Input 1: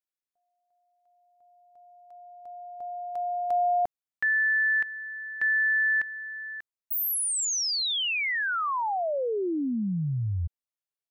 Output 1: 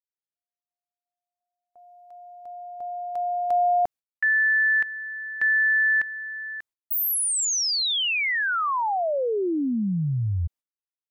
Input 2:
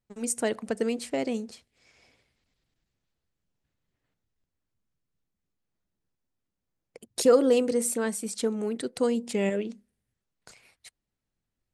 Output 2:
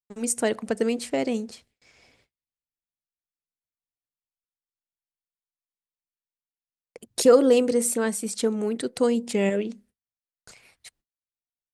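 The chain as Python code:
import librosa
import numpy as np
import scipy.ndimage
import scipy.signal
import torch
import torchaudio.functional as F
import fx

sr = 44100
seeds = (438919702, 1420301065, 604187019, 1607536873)

y = fx.gate_hold(x, sr, open_db=-54.0, close_db=-56.0, hold_ms=95.0, range_db=-31, attack_ms=1.4, release_ms=76.0)
y = F.gain(torch.from_numpy(y), 3.5).numpy()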